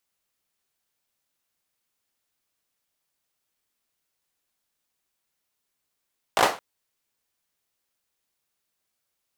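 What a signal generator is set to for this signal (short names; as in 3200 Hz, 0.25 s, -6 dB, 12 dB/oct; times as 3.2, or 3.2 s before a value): hand clap length 0.22 s, apart 19 ms, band 750 Hz, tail 0.31 s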